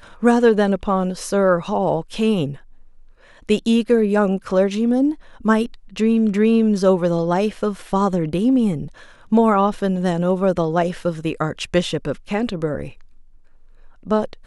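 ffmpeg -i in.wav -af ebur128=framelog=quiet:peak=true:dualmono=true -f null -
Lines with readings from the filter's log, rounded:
Integrated loudness:
  I:         -16.3 LUFS
  Threshold: -26.9 LUFS
Loudness range:
  LRA:         4.2 LU
  Threshold: -36.8 LUFS
  LRA low:   -19.6 LUFS
  LRA high:  -15.4 LUFS
True peak:
  Peak:       -2.6 dBFS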